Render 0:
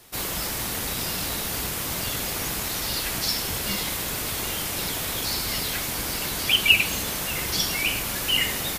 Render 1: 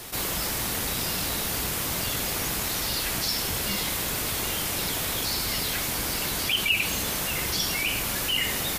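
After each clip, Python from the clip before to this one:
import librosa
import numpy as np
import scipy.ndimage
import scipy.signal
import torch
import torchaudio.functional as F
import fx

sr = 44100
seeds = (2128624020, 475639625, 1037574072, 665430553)

y = fx.env_flatten(x, sr, amount_pct=50)
y = y * librosa.db_to_amplitude(-8.0)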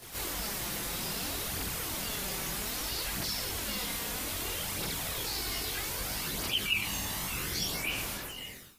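y = fx.fade_out_tail(x, sr, length_s=1.04)
y = fx.quant_dither(y, sr, seeds[0], bits=10, dither='triangular')
y = fx.chorus_voices(y, sr, voices=2, hz=0.31, base_ms=22, depth_ms=3.0, mix_pct=65)
y = y * librosa.db_to_amplitude(-4.0)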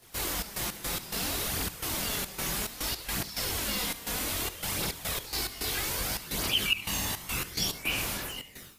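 y = fx.step_gate(x, sr, bpm=107, pattern='.xx.x.x.xxxx.xxx', floor_db=-12.0, edge_ms=4.5)
y = y + 10.0 ** (-18.0 / 20.0) * np.pad(y, (int(72 * sr / 1000.0), 0))[:len(y)]
y = y * librosa.db_to_amplitude(3.5)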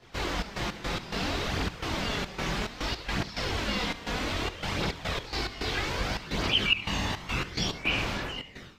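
y = fx.air_absorb(x, sr, metres=180.0)
y = y * librosa.db_to_amplitude(5.5)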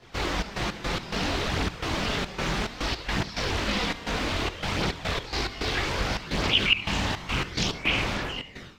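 y = fx.doppler_dist(x, sr, depth_ms=0.49)
y = y * librosa.db_to_amplitude(3.0)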